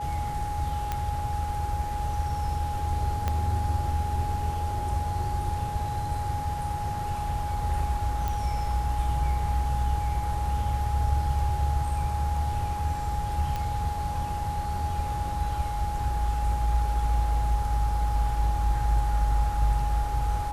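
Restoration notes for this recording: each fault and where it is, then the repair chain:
tone 830 Hz -31 dBFS
0.92 pop -15 dBFS
3.28 pop -14 dBFS
8.28 pop
13.56 pop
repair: de-click; notch 830 Hz, Q 30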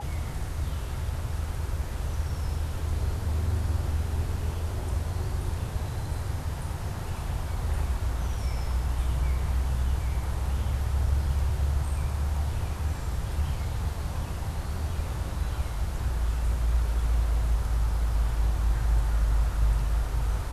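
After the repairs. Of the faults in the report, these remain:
3.28 pop

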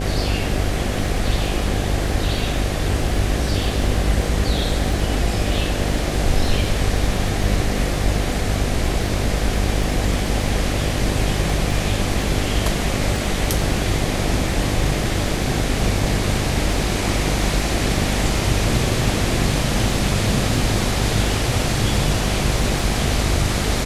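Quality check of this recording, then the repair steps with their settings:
buzz 50 Hz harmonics 15 -24 dBFS
crackle 21/s -27 dBFS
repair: de-click; de-hum 50 Hz, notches 15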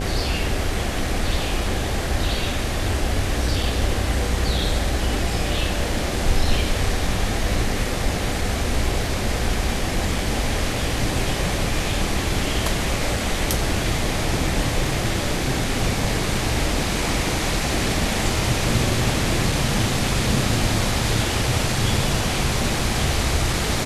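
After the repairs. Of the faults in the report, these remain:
none

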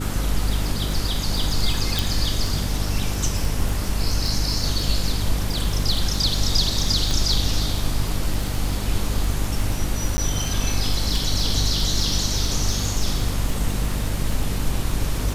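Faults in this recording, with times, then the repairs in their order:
crackle 33/s -24 dBFS
hum 50 Hz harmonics 6 -26 dBFS
1.99 pop
7.11 pop
10.17–10.18 gap 10 ms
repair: de-click; de-hum 50 Hz, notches 6; interpolate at 10.17, 10 ms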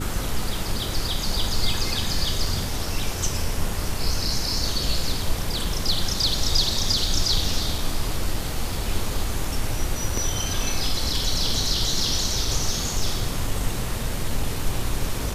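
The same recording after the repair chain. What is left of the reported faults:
7.11 pop

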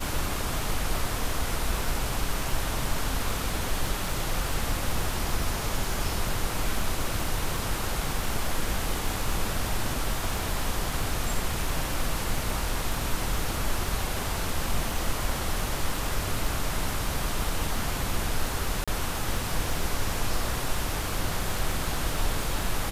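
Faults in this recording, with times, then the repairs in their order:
crackle 46/s -32 dBFS
18.84–18.88 gap 36 ms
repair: de-click; interpolate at 18.84, 36 ms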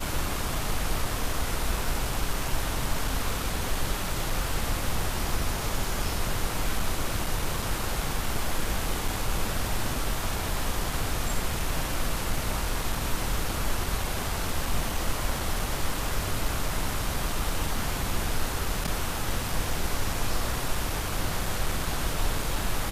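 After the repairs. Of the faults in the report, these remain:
none

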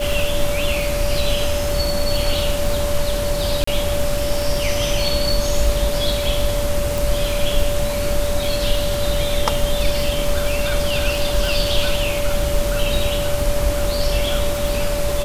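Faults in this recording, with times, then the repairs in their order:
crackle 31/s -21 dBFS
tone 580 Hz -22 dBFS
3.64–3.67 gap 34 ms
6.98 pop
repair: de-click; notch 580 Hz, Q 30; interpolate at 3.64, 34 ms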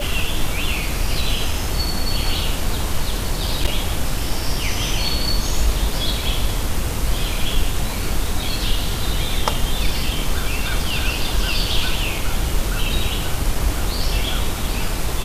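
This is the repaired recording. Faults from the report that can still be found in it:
none

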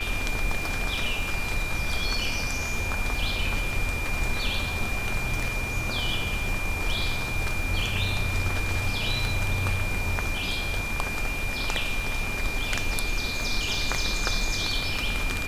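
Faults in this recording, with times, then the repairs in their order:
crackle 23/s -33 dBFS
tone 2400 Hz -31 dBFS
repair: de-click; notch 2400 Hz, Q 30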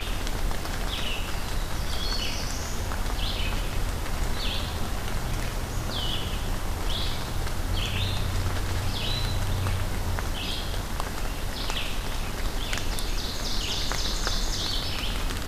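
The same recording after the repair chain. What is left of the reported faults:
none

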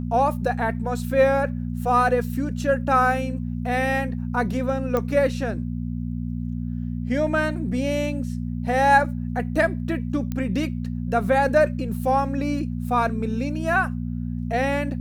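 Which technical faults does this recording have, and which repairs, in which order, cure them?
hum 60 Hz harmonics 4 -28 dBFS
4.97 pop -12 dBFS
10.32 pop -16 dBFS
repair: de-click; de-hum 60 Hz, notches 4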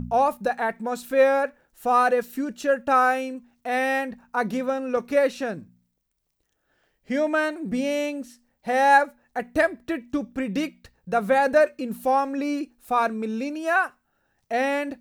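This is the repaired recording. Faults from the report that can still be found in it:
none

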